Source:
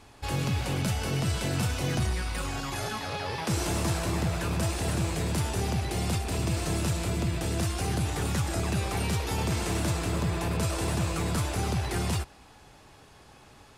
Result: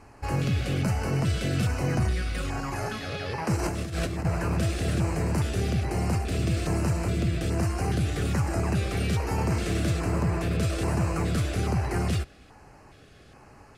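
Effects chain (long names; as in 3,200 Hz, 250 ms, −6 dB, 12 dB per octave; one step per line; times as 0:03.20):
high-shelf EQ 4,900 Hz −9.5 dB
0:03.56–0:04.25: compressor whose output falls as the input rises −31 dBFS, ratio −0.5
auto-filter notch square 1.2 Hz 930–3,500 Hz
level +3 dB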